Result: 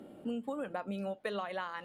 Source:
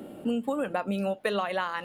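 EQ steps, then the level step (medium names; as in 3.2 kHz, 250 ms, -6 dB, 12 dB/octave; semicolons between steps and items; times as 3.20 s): treble shelf 12 kHz -11.5 dB; band-stop 2.7 kHz, Q 19; -8.5 dB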